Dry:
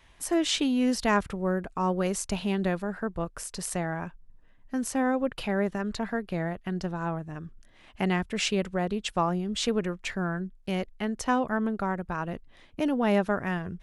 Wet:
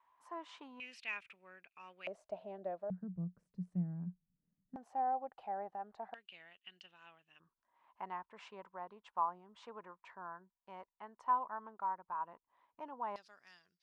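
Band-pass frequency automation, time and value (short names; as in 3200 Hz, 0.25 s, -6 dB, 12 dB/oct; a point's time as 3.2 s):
band-pass, Q 8.9
1000 Hz
from 0.8 s 2500 Hz
from 2.07 s 640 Hz
from 2.9 s 180 Hz
from 4.76 s 780 Hz
from 6.14 s 2900 Hz
from 7.4 s 980 Hz
from 13.16 s 4800 Hz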